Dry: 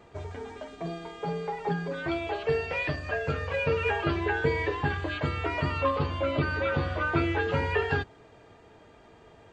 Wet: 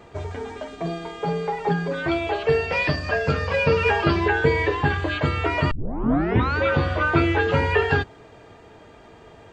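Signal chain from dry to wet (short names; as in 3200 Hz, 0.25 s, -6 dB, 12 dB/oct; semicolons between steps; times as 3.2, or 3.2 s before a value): 2.72–4.28 thirty-one-band EQ 200 Hz +9 dB, 1000 Hz +3 dB, 5000 Hz +10 dB; 5.71 tape start 0.87 s; gain +7 dB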